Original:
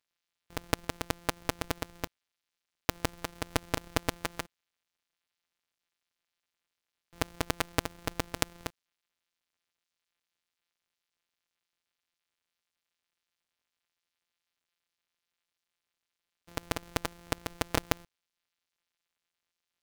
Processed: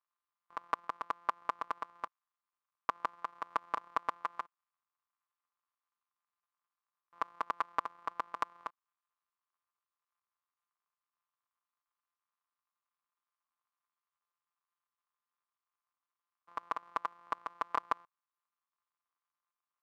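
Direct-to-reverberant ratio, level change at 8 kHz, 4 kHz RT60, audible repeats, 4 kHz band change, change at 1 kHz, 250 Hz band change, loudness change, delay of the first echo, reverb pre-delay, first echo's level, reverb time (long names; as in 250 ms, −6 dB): no reverb audible, below −20 dB, no reverb audible, no echo audible, −17.5 dB, +3.0 dB, −19.0 dB, −4.5 dB, no echo audible, no reverb audible, no echo audible, no reverb audible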